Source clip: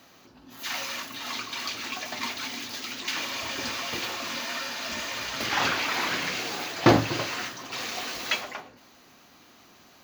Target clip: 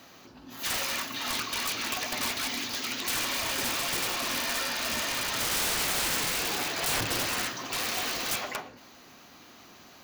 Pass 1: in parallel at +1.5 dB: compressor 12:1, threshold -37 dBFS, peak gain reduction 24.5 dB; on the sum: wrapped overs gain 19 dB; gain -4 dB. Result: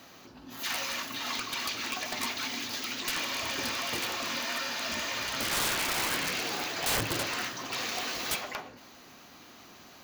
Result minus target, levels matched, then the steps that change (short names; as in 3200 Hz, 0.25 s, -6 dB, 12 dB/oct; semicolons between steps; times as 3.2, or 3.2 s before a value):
compressor: peak gain reduction +9.5 dB
change: compressor 12:1, threshold -26.5 dBFS, peak gain reduction 15 dB